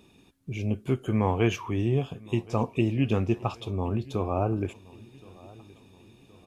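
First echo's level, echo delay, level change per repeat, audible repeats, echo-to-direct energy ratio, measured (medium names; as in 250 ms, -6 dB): -22.5 dB, 1071 ms, -6.5 dB, 2, -21.5 dB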